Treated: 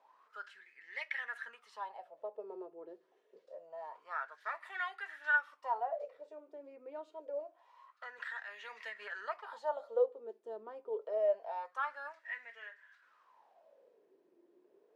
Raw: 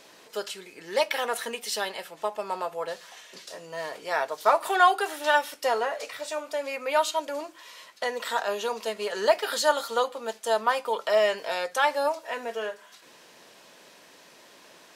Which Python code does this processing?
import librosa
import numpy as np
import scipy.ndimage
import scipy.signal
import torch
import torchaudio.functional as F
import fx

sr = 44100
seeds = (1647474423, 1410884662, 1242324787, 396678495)

y = fx.wah_lfo(x, sr, hz=0.26, low_hz=350.0, high_hz=2000.0, q=9.8)
y = fx.band_squash(y, sr, depth_pct=100, at=(8.18, 9.21))